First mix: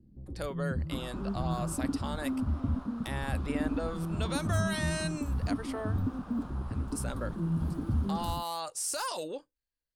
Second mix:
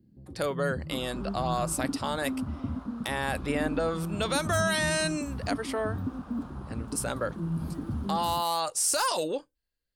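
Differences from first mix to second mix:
speech +7.5 dB; first sound: add high-pass 100 Hz

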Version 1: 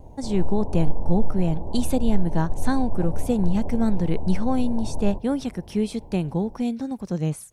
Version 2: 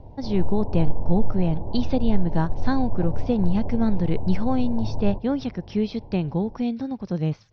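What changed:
speech: add steep low-pass 5.5 kHz 72 dB/octave; master: add peaking EQ 110 Hz +10 dB 0.23 oct

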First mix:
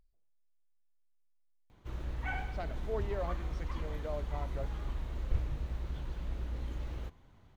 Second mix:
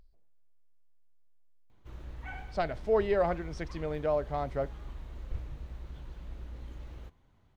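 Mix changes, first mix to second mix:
speech +11.0 dB; background -5.5 dB

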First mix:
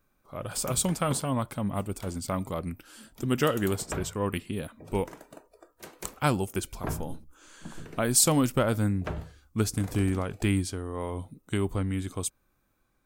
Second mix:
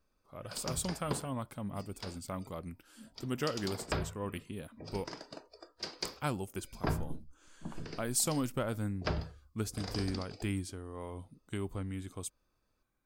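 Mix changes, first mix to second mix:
speech -9.5 dB; background: add resonant low-pass 4.9 kHz, resonance Q 11

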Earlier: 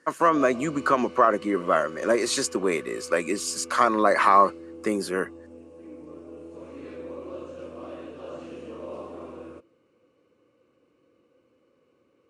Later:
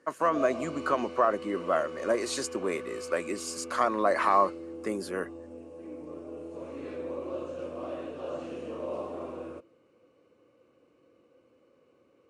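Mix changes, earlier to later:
speech -7.5 dB; master: add peaking EQ 670 Hz +4.5 dB 0.77 oct

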